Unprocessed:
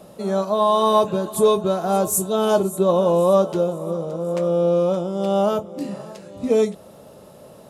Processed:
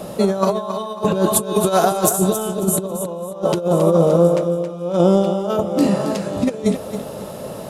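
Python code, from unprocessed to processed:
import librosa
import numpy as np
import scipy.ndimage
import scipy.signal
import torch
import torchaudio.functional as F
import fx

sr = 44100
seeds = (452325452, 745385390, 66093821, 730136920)

y = fx.tilt_eq(x, sr, slope=2.0, at=(1.43, 2.13))
y = fx.over_compress(y, sr, threshold_db=-25.0, ratio=-0.5)
y = fx.echo_feedback(y, sr, ms=272, feedback_pct=28, wet_db=-9.5)
y = y * 10.0 ** (7.5 / 20.0)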